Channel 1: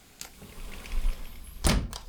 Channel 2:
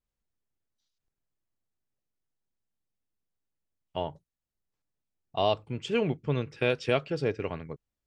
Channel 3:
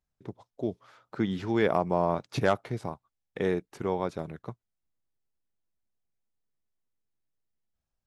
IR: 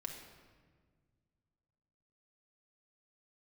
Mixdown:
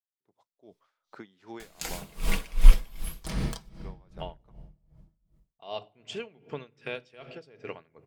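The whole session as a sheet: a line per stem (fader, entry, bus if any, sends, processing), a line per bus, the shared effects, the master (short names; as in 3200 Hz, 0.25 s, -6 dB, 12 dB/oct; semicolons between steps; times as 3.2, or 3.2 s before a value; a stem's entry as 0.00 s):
+2.0 dB, 1.60 s, no bus, send -6 dB, comb 6.2 ms, depth 49%
-10.0 dB, 0.25 s, bus A, send -17 dB, dry
-16.5 dB, 0.00 s, bus A, no send, dry
bus A: 0.0 dB, HPF 640 Hz 6 dB/oct; compressor 6:1, threshold -47 dBFS, peak gain reduction 13.5 dB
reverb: on, RT60 1.6 s, pre-delay 4 ms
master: AGC gain up to 13.5 dB; dB-linear tremolo 2.6 Hz, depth 22 dB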